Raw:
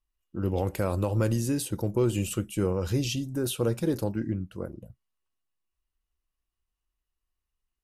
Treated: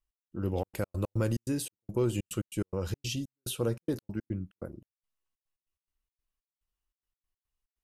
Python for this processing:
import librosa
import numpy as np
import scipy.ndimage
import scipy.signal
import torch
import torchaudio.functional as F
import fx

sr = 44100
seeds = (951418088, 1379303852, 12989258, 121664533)

y = fx.step_gate(x, sr, bpm=143, pattern='x..xxx.x.x.xx.x', floor_db=-60.0, edge_ms=4.5)
y = y * librosa.db_to_amplitude(-3.5)